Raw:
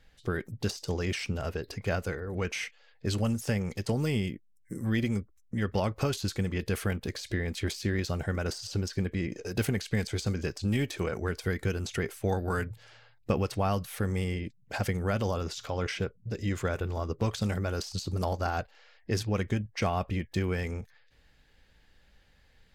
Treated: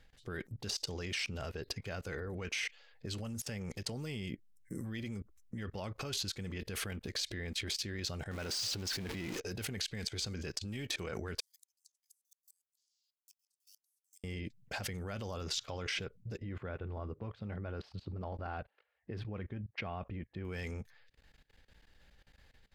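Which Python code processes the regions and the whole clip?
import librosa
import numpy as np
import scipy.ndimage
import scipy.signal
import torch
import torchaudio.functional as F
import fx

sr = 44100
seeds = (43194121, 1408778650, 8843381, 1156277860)

y = fx.chain(x, sr, fx.zero_step(step_db=-34.5),
    fx.low_shelf(hz=82.0, db=-8.0), at=(8.31, 9.4))
y = fx.chain(y, sr, fx.block_float(bits=7),
    fx.cheby2_highpass(hz=1000.0, order=4, stop_db=80),
    fx.gate_flip(shuts_db=-41.0, range_db=-27), at=(11.4, 14.24))
y = fx.chain(y, sr, fx.highpass(hz=52.0, slope=12),
    fx.air_absorb(metres=430.0), at=(16.37, 20.45))
y = fx.level_steps(y, sr, step_db=21)
y = fx.dynamic_eq(y, sr, hz=3600.0, q=0.72, threshold_db=-57.0, ratio=4.0, max_db=6)
y = F.gain(torch.from_numpy(y), 1.5).numpy()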